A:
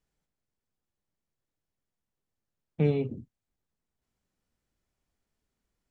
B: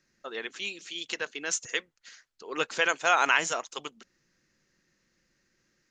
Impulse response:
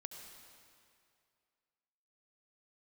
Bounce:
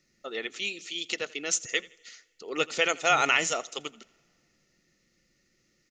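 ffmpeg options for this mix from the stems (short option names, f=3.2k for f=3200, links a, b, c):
-filter_complex "[0:a]adelay=300,volume=-19.5dB[a];[1:a]volume=2.5dB,asplit=3[b][c][d];[c]volume=-22dB[e];[d]volume=-21.5dB[f];[2:a]atrim=start_sample=2205[g];[e][g]afir=irnorm=-1:irlink=0[h];[f]aecho=0:1:83|166|249|332|415:1|0.34|0.116|0.0393|0.0134[i];[a][b][h][i]amix=inputs=4:normalize=0,asuperstop=centerf=1600:order=4:qfactor=6.4,equalizer=f=1k:t=o:w=0.4:g=-12"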